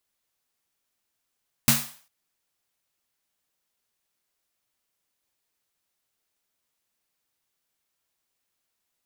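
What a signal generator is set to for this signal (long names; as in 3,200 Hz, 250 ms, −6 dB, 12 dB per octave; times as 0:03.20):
synth snare length 0.40 s, tones 140 Hz, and 230 Hz, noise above 610 Hz, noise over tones 3 dB, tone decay 0.30 s, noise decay 0.45 s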